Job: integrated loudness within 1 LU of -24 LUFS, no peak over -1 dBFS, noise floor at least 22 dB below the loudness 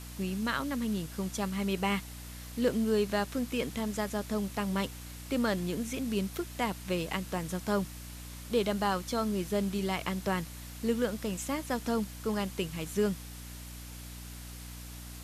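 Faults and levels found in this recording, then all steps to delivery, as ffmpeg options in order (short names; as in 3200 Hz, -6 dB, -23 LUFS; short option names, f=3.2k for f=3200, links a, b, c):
hum 60 Hz; harmonics up to 300 Hz; hum level -43 dBFS; noise floor -45 dBFS; noise floor target -55 dBFS; loudness -32.5 LUFS; peak -16.0 dBFS; loudness target -24.0 LUFS
-> -af "bandreject=f=60:t=h:w=4,bandreject=f=120:t=h:w=4,bandreject=f=180:t=h:w=4,bandreject=f=240:t=h:w=4,bandreject=f=300:t=h:w=4"
-af "afftdn=nr=10:nf=-45"
-af "volume=8.5dB"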